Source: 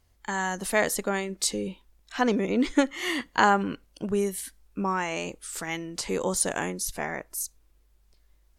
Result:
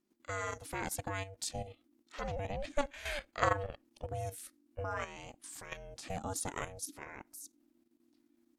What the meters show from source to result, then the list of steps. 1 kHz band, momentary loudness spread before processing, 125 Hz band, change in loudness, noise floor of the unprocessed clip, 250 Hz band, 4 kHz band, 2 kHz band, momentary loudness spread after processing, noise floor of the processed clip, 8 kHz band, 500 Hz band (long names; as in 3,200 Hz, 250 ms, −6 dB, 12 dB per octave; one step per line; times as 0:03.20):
−11.0 dB, 11 LU, −5.0 dB, −12.0 dB, −64 dBFS, −19.5 dB, −12.5 dB, −12.0 dB, 13 LU, −75 dBFS, −12.5 dB, −11.0 dB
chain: ring modulation 290 Hz
output level in coarse steps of 11 dB
level −4.5 dB